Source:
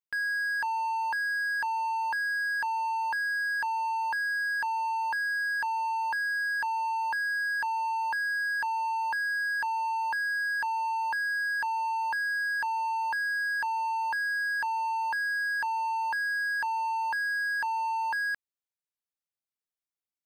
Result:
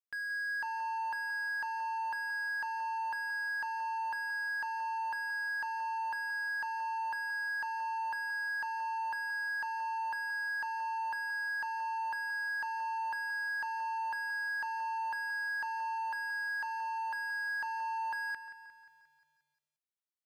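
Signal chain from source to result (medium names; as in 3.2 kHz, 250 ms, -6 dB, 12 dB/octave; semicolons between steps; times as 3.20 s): 15.95–17.46 s: bass shelf 250 Hz -10 dB; bit-crushed delay 177 ms, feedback 55%, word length 11-bit, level -12.5 dB; trim -8 dB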